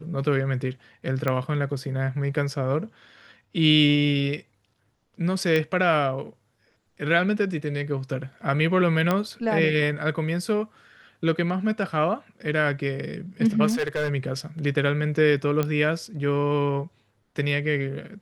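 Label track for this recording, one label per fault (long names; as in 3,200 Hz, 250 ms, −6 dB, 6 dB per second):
1.280000	1.280000	click −13 dBFS
5.560000	5.560000	click −12 dBFS
9.110000	9.110000	click −10 dBFS
13.690000	14.100000	clipping −21 dBFS
15.630000	15.630000	click −12 dBFS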